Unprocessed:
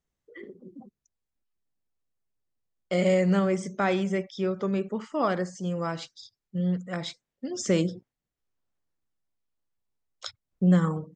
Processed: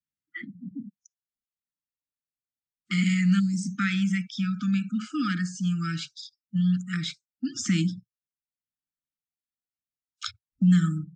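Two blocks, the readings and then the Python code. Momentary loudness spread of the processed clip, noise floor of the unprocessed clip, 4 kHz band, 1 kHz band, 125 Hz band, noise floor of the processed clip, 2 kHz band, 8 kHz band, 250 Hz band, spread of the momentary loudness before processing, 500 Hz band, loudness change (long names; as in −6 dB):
18 LU, below −85 dBFS, +4.0 dB, −6.5 dB, +3.0 dB, below −85 dBFS, +3.0 dB, +3.0 dB, +3.0 dB, 19 LU, below −20 dB, +1.0 dB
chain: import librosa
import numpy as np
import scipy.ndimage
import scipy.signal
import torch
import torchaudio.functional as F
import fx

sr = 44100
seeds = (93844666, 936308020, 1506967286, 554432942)

y = fx.noise_reduce_blind(x, sr, reduce_db=28)
y = fx.brickwall_bandstop(y, sr, low_hz=320.0, high_hz=1200.0)
y = fx.spec_box(y, sr, start_s=3.4, length_s=0.34, low_hz=510.0, high_hz=3800.0, gain_db=-24)
y = scipy.signal.sosfilt(scipy.signal.butter(2, 94.0, 'highpass', fs=sr, output='sos'), y)
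y = fx.dynamic_eq(y, sr, hz=1400.0, q=3.3, threshold_db=-50.0, ratio=4.0, max_db=-5)
y = fx.band_squash(y, sr, depth_pct=40)
y = y * 10.0 ** (4.5 / 20.0)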